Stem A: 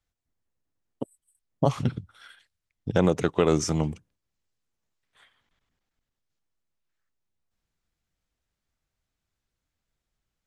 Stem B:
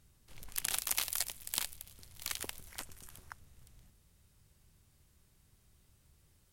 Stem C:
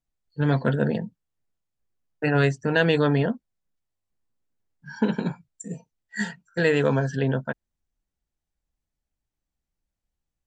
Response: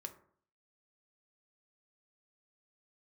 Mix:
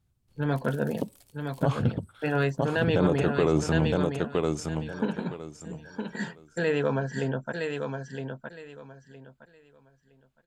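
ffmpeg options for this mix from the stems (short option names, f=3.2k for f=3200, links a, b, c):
-filter_complex "[0:a]bandreject=f=5.8k:w=5.3,volume=2dB,asplit=4[a][b][c][d];[b]volume=-17dB[e];[c]volume=-7.5dB[f];[1:a]asoftclip=type=tanh:threshold=-25dB,equalizer=f=120:t=o:w=2.9:g=14,volume=-19dB,asplit=2[g][h];[h]volume=-3dB[i];[2:a]lowshelf=f=380:g=-5,volume=-2dB,asplit=2[j][k];[k]volume=-6.5dB[l];[d]apad=whole_len=287742[m];[g][m]sidechaincompress=threshold=-27dB:ratio=8:attack=7:release=1130[n];[a][j]amix=inputs=2:normalize=0,highshelf=f=4.1k:g=-9.5,alimiter=limit=-14dB:level=0:latency=1:release=19,volume=0dB[o];[3:a]atrim=start_sample=2205[p];[e][i]amix=inputs=2:normalize=0[q];[q][p]afir=irnorm=-1:irlink=0[r];[f][l]amix=inputs=2:normalize=0,aecho=0:1:964|1928|2892|3856:1|0.22|0.0484|0.0106[s];[n][o][r][s]amix=inputs=4:normalize=0,equalizer=f=1.9k:t=o:w=0.26:g=-5"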